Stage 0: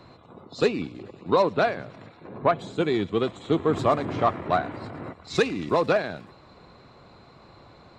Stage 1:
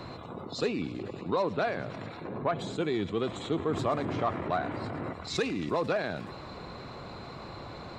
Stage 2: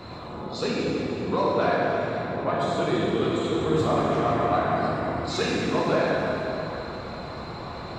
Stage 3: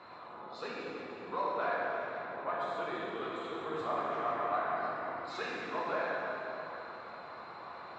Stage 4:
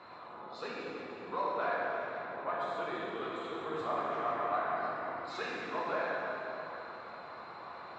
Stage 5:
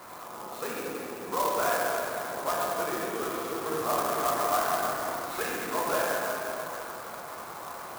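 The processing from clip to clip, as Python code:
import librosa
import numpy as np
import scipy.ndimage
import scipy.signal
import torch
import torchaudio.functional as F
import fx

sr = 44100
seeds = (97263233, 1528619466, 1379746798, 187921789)

y1 = fx.env_flatten(x, sr, amount_pct=50)
y1 = F.gain(torch.from_numpy(y1), -9.0).numpy()
y2 = fx.rev_plate(y1, sr, seeds[0], rt60_s=3.4, hf_ratio=0.65, predelay_ms=0, drr_db=-6.0)
y3 = fx.bandpass_q(y2, sr, hz=1300.0, q=0.97)
y3 = F.gain(torch.from_numpy(y3), -6.0).numpy()
y4 = y3
y5 = fx.clock_jitter(y4, sr, seeds[1], jitter_ms=0.057)
y5 = F.gain(torch.from_numpy(y5), 6.5).numpy()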